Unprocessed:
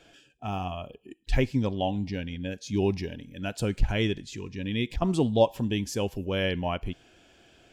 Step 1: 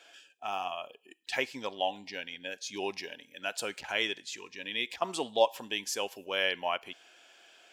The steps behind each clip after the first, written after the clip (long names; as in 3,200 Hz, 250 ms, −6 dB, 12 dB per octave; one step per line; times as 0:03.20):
high-pass filter 760 Hz 12 dB per octave
level +2.5 dB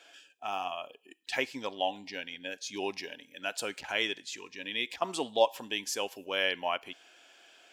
parametric band 280 Hz +4 dB 0.24 octaves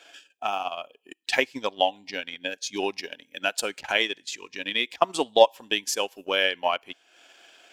transient designer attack +6 dB, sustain −9 dB
level +4.5 dB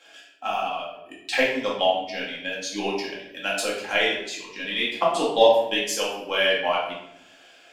rectangular room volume 230 cubic metres, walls mixed, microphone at 2.2 metres
level −5 dB